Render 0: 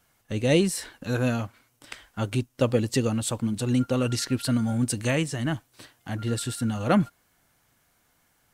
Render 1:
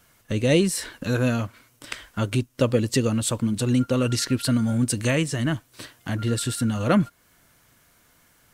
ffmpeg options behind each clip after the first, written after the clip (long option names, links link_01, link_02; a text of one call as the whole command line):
ffmpeg -i in.wav -filter_complex "[0:a]asplit=2[link_01][link_02];[link_02]acompressor=threshold=-34dB:ratio=6,volume=3dB[link_03];[link_01][link_03]amix=inputs=2:normalize=0,equalizer=frequency=790:width=7.7:gain=-9" out.wav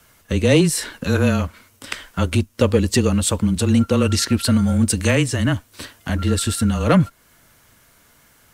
ffmpeg -i in.wav -filter_complex "[0:a]afreqshift=-22,asplit=2[link_01][link_02];[link_02]asoftclip=type=hard:threshold=-15.5dB,volume=-5dB[link_03];[link_01][link_03]amix=inputs=2:normalize=0,volume=1.5dB" out.wav